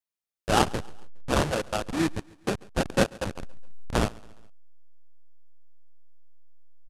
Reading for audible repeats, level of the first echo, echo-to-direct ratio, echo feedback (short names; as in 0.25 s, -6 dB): 2, -23.5 dB, -22.5 dB, 51%